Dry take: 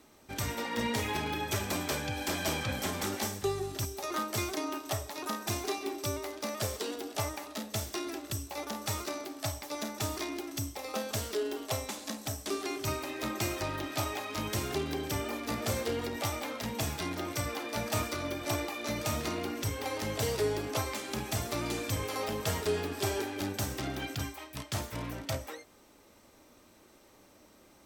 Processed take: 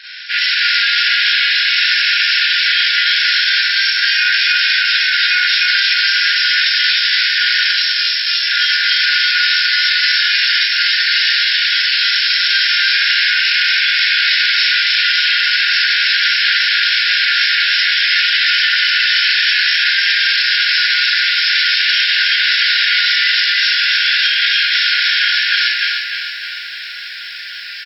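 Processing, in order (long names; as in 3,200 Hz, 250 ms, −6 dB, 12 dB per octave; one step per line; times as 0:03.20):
dynamic equaliser 2,000 Hz, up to −7 dB, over −58 dBFS, Q 4.7
full-wave rectification
on a send: single-tap delay 287 ms −4 dB
on the sum: downward compressor 5 to 1, threshold −34 dBFS, peak gain reduction 9 dB
brick-wall band-pass 1,400–5,500 Hz
0:07.68–0:08.39: first difference
0:09.07–0:10.44: double-tracking delay 24 ms −2 dB
four-comb reverb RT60 0.45 s, combs from 31 ms, DRR −8 dB
boost into a limiter +35 dB
feedback echo at a low word length 304 ms, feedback 55%, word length 7 bits, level −6.5 dB
level −4.5 dB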